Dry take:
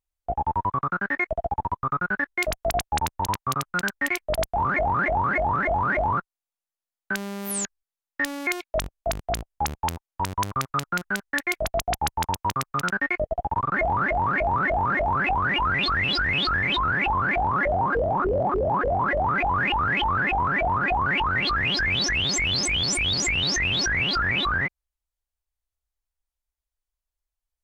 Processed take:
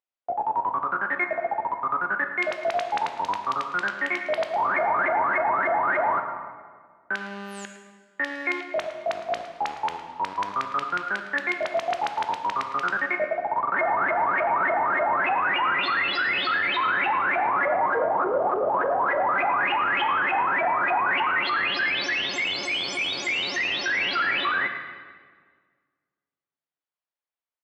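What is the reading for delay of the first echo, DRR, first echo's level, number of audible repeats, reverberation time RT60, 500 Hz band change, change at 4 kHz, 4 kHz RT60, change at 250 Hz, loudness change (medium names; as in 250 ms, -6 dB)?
109 ms, 5.5 dB, -14.5 dB, 1, 1.7 s, +0.5 dB, -3.5 dB, 1.3 s, -5.5 dB, -0.5 dB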